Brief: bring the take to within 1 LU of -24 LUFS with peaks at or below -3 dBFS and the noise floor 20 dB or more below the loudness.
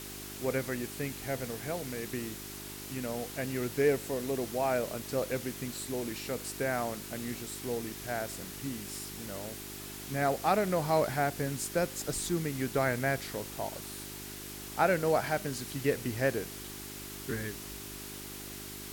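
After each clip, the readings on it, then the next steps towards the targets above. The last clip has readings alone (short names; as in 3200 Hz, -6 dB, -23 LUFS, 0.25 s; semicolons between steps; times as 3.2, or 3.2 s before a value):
hum 50 Hz; harmonics up to 400 Hz; hum level -45 dBFS; noise floor -44 dBFS; noise floor target -54 dBFS; loudness -34.0 LUFS; peak -14.0 dBFS; loudness target -24.0 LUFS
-> de-hum 50 Hz, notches 8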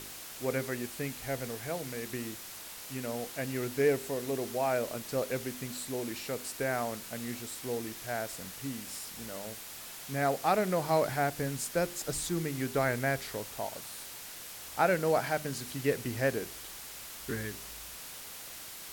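hum none; noise floor -45 dBFS; noise floor target -54 dBFS
-> noise print and reduce 9 dB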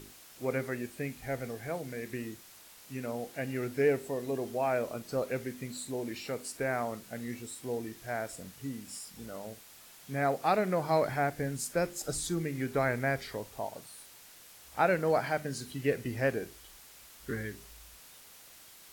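noise floor -54 dBFS; loudness -34.0 LUFS; peak -14.0 dBFS; loudness target -24.0 LUFS
-> gain +10 dB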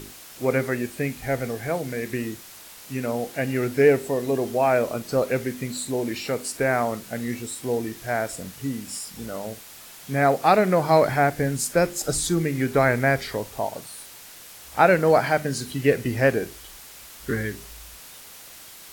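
loudness -24.0 LUFS; peak -4.0 dBFS; noise floor -44 dBFS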